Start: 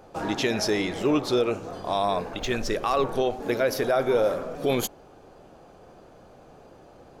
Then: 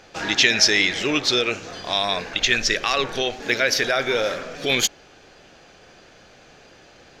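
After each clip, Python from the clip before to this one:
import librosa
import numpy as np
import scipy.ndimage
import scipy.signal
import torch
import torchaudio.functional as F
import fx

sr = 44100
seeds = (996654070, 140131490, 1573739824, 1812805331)

y = fx.band_shelf(x, sr, hz=3300.0, db=15.5, octaves=2.5)
y = F.gain(torch.from_numpy(y), -1.5).numpy()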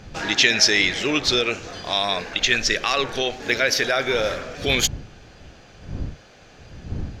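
y = fx.dmg_wind(x, sr, seeds[0], corner_hz=130.0, level_db=-37.0)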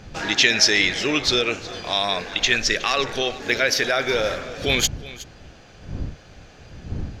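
y = x + 10.0 ** (-18.0 / 20.0) * np.pad(x, (int(366 * sr / 1000.0), 0))[:len(x)]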